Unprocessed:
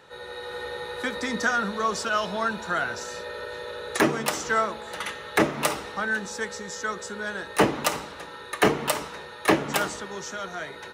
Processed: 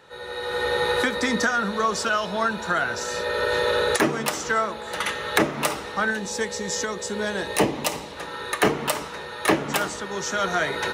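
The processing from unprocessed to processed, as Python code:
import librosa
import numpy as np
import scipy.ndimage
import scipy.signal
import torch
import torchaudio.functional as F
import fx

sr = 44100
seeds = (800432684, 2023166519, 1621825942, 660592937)

y = fx.recorder_agc(x, sr, target_db=-13.0, rise_db_per_s=15.0, max_gain_db=30)
y = fx.peak_eq(y, sr, hz=1400.0, db=-10.5, octaves=0.5, at=(6.1, 8.17))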